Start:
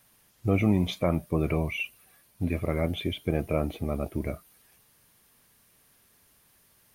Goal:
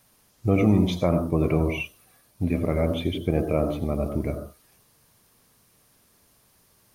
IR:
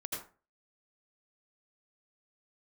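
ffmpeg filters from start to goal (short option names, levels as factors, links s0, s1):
-filter_complex "[0:a]asplit=2[s0][s1];[s1]asuperstop=centerf=2400:order=4:qfactor=0.95[s2];[1:a]atrim=start_sample=2205,afade=t=out:st=0.26:d=0.01,atrim=end_sample=11907,lowpass=8500[s3];[s2][s3]afir=irnorm=-1:irlink=0,volume=0.75[s4];[s0][s4]amix=inputs=2:normalize=0"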